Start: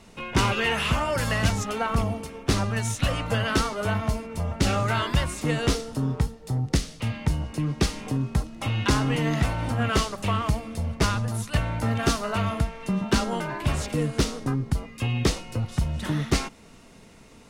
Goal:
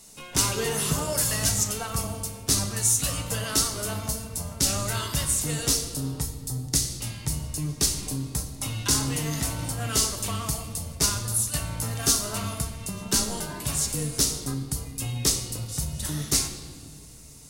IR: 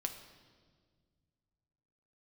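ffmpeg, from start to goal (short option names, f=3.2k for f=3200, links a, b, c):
-filter_complex "[0:a]asettb=1/sr,asplit=3[a][b][c];[a]atrim=end=0.544[d];[b]atrim=start=0.54:end=1.13,asetpts=PTS-STARTPTS,afade=t=in:d=0.004:c=qsin,afade=t=out:st=0.586:d=0.004:c=qsin,equalizer=f=160:t=o:w=0.67:g=8,equalizer=f=400:t=o:w=0.67:g=11,equalizer=f=2.5k:t=o:w=0.67:g=-7[e];[c]atrim=start=1.126[f];[d][e]acrossfade=d=0.004:c1=hsin:c2=qsin[g];[g][f]acrossfade=d=0.004:c1=qsin:c2=hsin,acrossover=split=4100[h][i];[i]crystalizer=i=10:c=0[j];[h][j]amix=inputs=2:normalize=0[k];[1:a]atrim=start_sample=2205,asetrate=37926,aresample=44100[l];[k][l]afir=irnorm=-1:irlink=0,volume=-7.5dB"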